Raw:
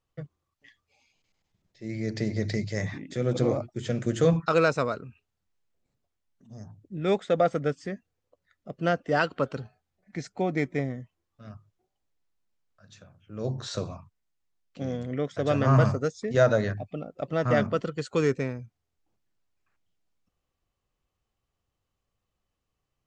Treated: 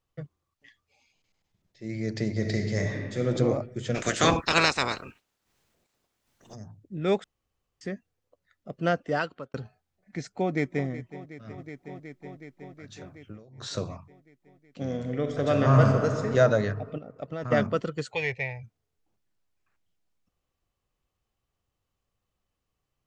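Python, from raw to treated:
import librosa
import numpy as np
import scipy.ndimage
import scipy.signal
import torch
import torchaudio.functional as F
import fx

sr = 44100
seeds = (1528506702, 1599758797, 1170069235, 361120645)

y = fx.reverb_throw(x, sr, start_s=2.33, length_s=0.94, rt60_s=1.5, drr_db=2.5)
y = fx.spec_clip(y, sr, under_db=27, at=(3.94, 6.54), fade=0.02)
y = fx.echo_throw(y, sr, start_s=10.29, length_s=0.59, ms=370, feedback_pct=80, wet_db=-15.0)
y = fx.over_compress(y, sr, threshold_db=-43.0, ratio=-1.0, at=(11.52, 13.62))
y = fx.reverb_throw(y, sr, start_s=14.85, length_s=1.44, rt60_s=2.6, drr_db=4.0)
y = fx.level_steps(y, sr, step_db=11, at=(16.98, 17.52))
y = fx.curve_eq(y, sr, hz=(120.0, 240.0, 850.0, 1300.0, 2000.0, 4300.0, 7500.0), db=(0, -26, 9, -27, 12, 0, -15), at=(18.11, 18.62), fade=0.02)
y = fx.edit(y, sr, fx.room_tone_fill(start_s=7.24, length_s=0.57),
    fx.fade_out_span(start_s=9.0, length_s=0.54), tone=tone)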